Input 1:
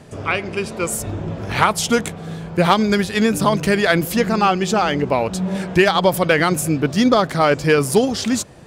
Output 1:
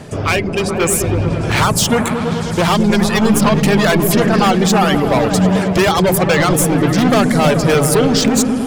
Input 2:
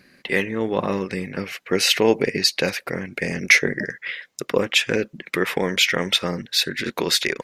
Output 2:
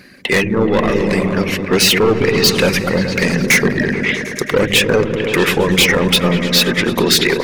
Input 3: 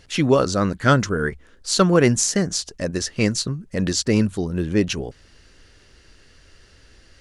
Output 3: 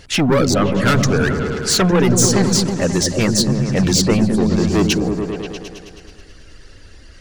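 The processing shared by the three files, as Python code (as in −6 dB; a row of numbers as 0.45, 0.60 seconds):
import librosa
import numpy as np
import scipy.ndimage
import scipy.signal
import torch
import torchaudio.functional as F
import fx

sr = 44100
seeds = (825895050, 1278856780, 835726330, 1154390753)

y = np.clip(10.0 ** (20.5 / 20.0) * x, -1.0, 1.0) / 10.0 ** (20.5 / 20.0)
y = fx.dereverb_blind(y, sr, rt60_s=1.2)
y = fx.echo_opening(y, sr, ms=107, hz=200, octaves=1, feedback_pct=70, wet_db=0)
y = y * 10.0 ** (-2 / 20.0) / np.max(np.abs(y))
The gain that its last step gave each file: +9.5, +11.5, +8.5 decibels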